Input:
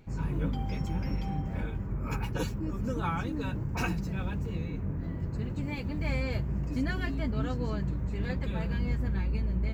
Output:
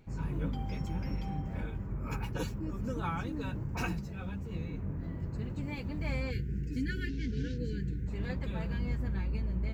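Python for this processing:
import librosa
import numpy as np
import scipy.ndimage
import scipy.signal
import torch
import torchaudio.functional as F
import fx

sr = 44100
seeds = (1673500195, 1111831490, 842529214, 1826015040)

y = fx.cvsd(x, sr, bps=32000, at=(7.09, 7.58))
y = fx.spec_erase(y, sr, start_s=6.31, length_s=1.77, low_hz=500.0, high_hz=1400.0)
y = fx.ensemble(y, sr, at=(3.99, 4.5), fade=0.02)
y = y * 10.0 ** (-3.5 / 20.0)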